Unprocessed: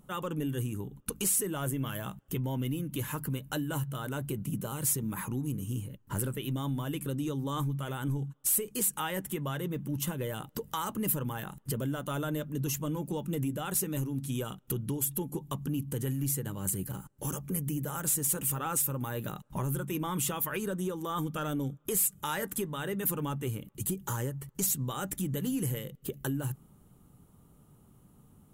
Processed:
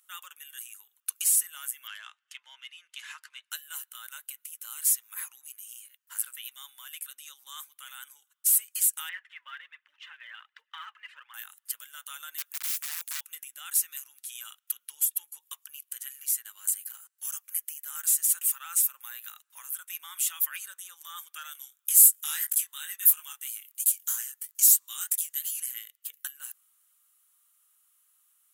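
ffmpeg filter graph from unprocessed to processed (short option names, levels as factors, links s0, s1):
-filter_complex "[0:a]asettb=1/sr,asplit=3[s0][s1][s2];[s0]atrim=end=1.874[s3];[s1]atrim=start=1.87:end=3.51,asetpts=PTS-STARTPTS,afade=t=in:d=0.004:c=qsin,afade=t=out:st=1.636:d=0.004:c=qsin,tiltshelf=f=640:g=-4.5,adynamicsmooth=sensitivity=5.5:basefreq=4500,highpass=380,lowpass=6300[s4];[s2]atrim=start=3.506[s5];[s3][s4]acrossfade=d=0.004:c1=hsin:c2=qsin[s6];[s6][s5]acrossfade=d=0.004:c1=qsin:c2=hsin,asettb=1/sr,asplit=3[s7][s8][s9];[s7]atrim=end=9.094[s10];[s8]atrim=start=9.09:end=11.34,asetpts=PTS-STARTPTS,afade=t=in:d=0.004:c=qsin,afade=t=out:st=2.246:d=0.004:c=qsin,highpass=f=370:w=0.5412,highpass=f=370:w=1.3066,equalizer=f=430:t=q:w=4:g=-5,equalizer=f=700:t=q:w=4:g=-5,equalizer=f=1800:t=q:w=4:g=5,lowpass=f=2900:w=0.5412,lowpass=f=2900:w=1.3066,aphaser=in_gain=1:out_gain=1:delay=3.4:decay=0.47:speed=1.3:type=triangular[s11];[s9]atrim=start=11.336[s12];[s10][s11]acrossfade=d=0.004:c1=hsin:c2=qsin[s13];[s13][s12]acrossfade=d=0.004:c1=qsin:c2=hsin,asettb=1/sr,asplit=3[s14][s15][s16];[s14]atrim=end=12.384[s17];[s15]atrim=start=12.38:end=13.21,asetpts=PTS-STARTPTS,afade=t=in:d=0.004:c=qsin,afade=t=out:st=0.826:d=0.004:c=qsin,bass=f=250:g=-2,treble=f=4000:g=8,aeval=exprs='(mod(29.9*val(0)+1,2)-1)/29.9':c=same[s18];[s16]atrim=start=13.206[s19];[s17][s18]acrossfade=d=0.004:c1=hsin:c2=qsin[s20];[s20][s19]acrossfade=d=0.004:c1=qsin:c2=hsin,asettb=1/sr,asplit=3[s21][s22][s23];[s21]atrim=end=21.534[s24];[s22]atrim=start=21.53:end=25.6,asetpts=PTS-STARTPTS,afade=t=in:d=0.004:c=qsin,afade=t=out:st=4.066:d=0.004:c=qsin,highshelf=f=3700:g=11,flanger=delay=18.5:depth=6:speed=3[s25];[s23]atrim=start=25.596[s26];[s24][s25]acrossfade=d=0.004:c1=hsin:c2=qsin[s27];[s27][s26]acrossfade=d=0.004:c1=qsin:c2=hsin,highpass=f=1500:w=0.5412,highpass=f=1500:w=1.3066,highshelf=f=4900:g=7.5,volume=0.891"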